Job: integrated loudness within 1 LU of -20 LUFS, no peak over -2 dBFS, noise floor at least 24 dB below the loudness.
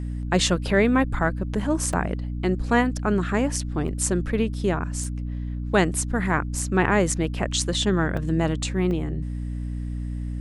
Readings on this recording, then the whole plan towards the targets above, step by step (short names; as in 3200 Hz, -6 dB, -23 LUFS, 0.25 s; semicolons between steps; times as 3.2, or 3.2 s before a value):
dropouts 6; longest dropout 3.1 ms; hum 60 Hz; harmonics up to 300 Hz; hum level -27 dBFS; loudness -24.5 LUFS; peak -4.5 dBFS; loudness target -20.0 LUFS
-> interpolate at 1.93/3.88/5.04/6.59/8.17/8.91, 3.1 ms; de-hum 60 Hz, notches 5; gain +4.5 dB; limiter -2 dBFS